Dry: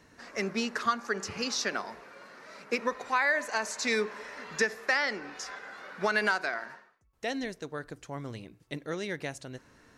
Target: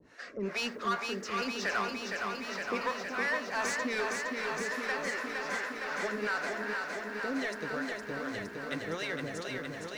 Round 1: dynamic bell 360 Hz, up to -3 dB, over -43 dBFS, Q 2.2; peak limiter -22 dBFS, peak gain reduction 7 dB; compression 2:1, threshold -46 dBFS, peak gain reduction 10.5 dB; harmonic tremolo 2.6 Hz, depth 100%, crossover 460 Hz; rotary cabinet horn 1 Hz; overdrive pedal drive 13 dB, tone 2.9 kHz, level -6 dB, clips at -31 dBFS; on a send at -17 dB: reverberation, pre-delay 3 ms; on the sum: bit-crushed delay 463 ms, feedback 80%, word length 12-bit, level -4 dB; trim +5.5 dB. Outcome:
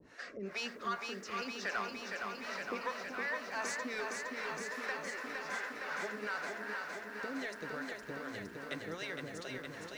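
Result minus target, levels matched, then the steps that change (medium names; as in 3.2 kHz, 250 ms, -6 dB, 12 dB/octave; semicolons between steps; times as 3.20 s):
compression: peak gain reduction +10.5 dB
remove: compression 2:1, threshold -46 dBFS, peak gain reduction 10.5 dB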